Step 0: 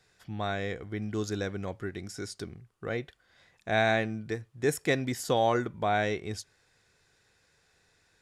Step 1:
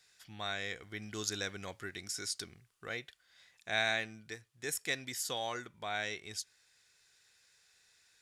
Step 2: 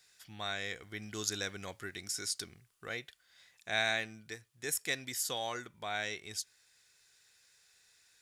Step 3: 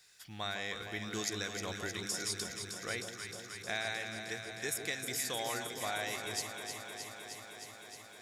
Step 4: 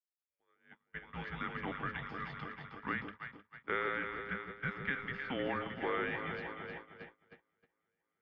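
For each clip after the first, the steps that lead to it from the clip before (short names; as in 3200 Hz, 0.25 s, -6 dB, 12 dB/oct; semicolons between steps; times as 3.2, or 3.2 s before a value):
tilt shelf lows -9.5 dB, about 1300 Hz; vocal rider 2 s; gain -7.5 dB
high shelf 9600 Hz +7 dB
compressor, threshold -36 dBFS, peak gain reduction 10 dB; on a send: echo with dull and thin repeats by turns 0.155 s, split 960 Hz, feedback 89%, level -6 dB; on the sum: gain +2.5 dB
opening faded in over 1.62 s; gate -43 dBFS, range -34 dB; mistuned SSB -260 Hz 410–2800 Hz; gain +3 dB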